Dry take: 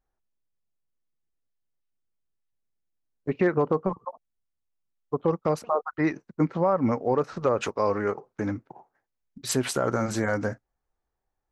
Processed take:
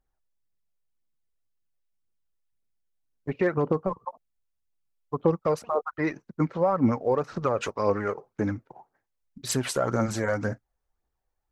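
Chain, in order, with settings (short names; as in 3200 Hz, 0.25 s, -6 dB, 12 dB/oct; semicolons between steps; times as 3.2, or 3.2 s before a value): phaser 1.9 Hz, delay 2.2 ms, feedback 41%; gain -1.5 dB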